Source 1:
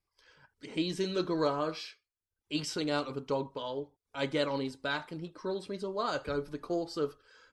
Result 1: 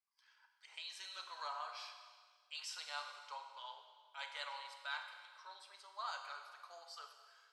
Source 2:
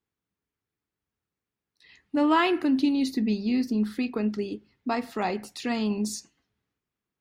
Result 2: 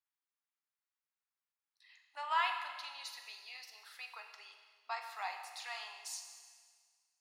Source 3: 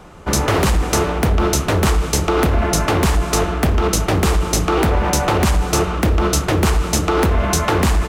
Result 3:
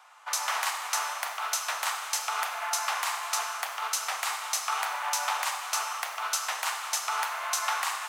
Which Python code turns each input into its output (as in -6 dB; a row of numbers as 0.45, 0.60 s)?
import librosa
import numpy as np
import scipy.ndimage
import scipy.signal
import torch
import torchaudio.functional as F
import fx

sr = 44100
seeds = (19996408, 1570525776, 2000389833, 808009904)

y = scipy.signal.sosfilt(scipy.signal.butter(6, 800.0, 'highpass', fs=sr, output='sos'), x)
y = fx.rev_schroeder(y, sr, rt60_s=1.7, comb_ms=32, drr_db=5.5)
y = y * 10.0 ** (-8.5 / 20.0)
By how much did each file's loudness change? -13.0, -14.0, -12.5 LU